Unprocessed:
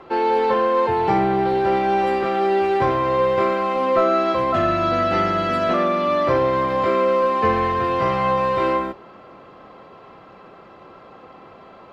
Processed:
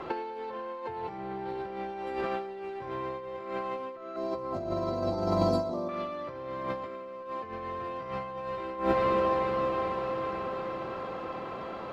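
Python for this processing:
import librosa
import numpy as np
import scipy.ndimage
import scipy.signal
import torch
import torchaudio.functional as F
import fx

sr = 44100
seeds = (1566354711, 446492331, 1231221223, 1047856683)

y = fx.ellip_bandstop(x, sr, low_hz=1000.0, high_hz=4300.0, order=3, stop_db=40, at=(4.16, 5.89))
y = fx.echo_diffused(y, sr, ms=473, feedback_pct=66, wet_db=-14.0)
y = fx.over_compress(y, sr, threshold_db=-26.0, ratio=-0.5)
y = y * librosa.db_to_amplitude(-4.5)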